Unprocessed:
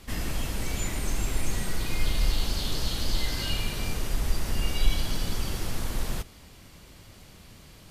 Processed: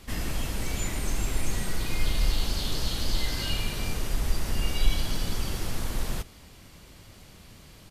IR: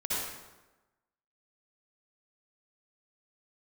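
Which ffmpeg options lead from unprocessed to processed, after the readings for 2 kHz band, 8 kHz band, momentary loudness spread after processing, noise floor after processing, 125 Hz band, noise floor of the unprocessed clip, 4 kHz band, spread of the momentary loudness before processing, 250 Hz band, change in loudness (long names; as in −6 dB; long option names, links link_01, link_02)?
0.0 dB, 0.0 dB, 21 LU, −51 dBFS, 0.0 dB, −51 dBFS, 0.0 dB, 21 LU, 0.0 dB, 0.0 dB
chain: -af "aresample=32000,aresample=44100"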